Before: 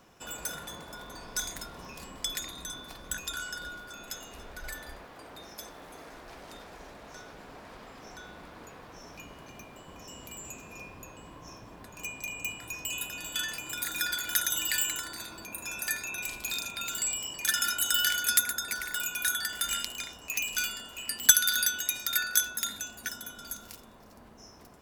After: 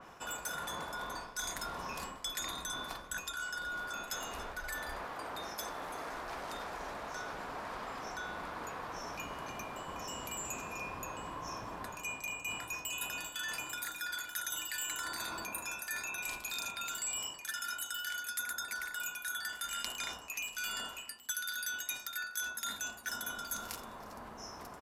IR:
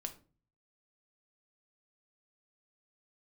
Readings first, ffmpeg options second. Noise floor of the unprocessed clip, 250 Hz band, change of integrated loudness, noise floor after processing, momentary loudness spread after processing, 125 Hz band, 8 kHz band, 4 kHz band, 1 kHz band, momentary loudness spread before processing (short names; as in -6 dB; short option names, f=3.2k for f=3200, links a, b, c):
-51 dBFS, -2.0 dB, -9.5 dB, -49 dBFS, 6 LU, -2.5 dB, -9.5 dB, -8.0 dB, +1.0 dB, 22 LU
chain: -af "aresample=32000,aresample=44100,equalizer=f=1.1k:t=o:w=1.8:g=9.5,areverse,acompressor=threshold=-38dB:ratio=16,areverse,adynamicequalizer=threshold=0.00158:dfrequency=3600:dqfactor=0.7:tfrequency=3600:tqfactor=0.7:attack=5:release=100:ratio=0.375:range=1.5:mode=boostabove:tftype=highshelf,volume=1dB"